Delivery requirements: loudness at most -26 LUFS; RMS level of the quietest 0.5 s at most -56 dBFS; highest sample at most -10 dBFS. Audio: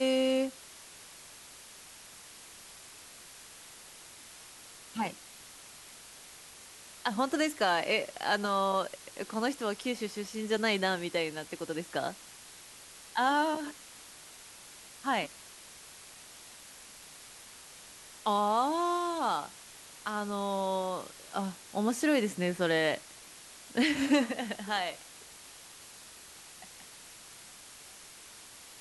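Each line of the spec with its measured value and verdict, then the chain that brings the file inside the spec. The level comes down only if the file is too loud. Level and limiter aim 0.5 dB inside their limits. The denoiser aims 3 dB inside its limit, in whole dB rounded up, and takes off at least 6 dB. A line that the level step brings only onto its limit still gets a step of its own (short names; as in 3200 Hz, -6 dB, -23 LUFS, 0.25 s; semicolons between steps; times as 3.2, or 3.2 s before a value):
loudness -31.5 LUFS: OK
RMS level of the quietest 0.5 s -51 dBFS: fail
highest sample -15.0 dBFS: OK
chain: denoiser 8 dB, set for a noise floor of -51 dBFS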